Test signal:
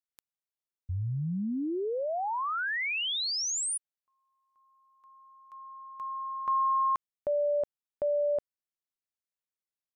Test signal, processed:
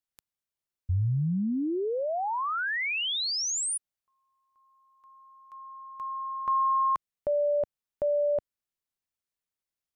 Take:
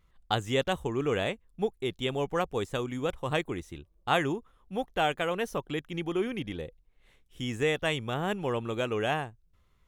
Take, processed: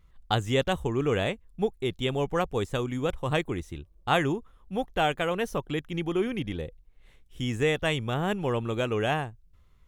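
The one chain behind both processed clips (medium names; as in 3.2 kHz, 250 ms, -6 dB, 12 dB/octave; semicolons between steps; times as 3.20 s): bass shelf 140 Hz +7 dB; trim +1.5 dB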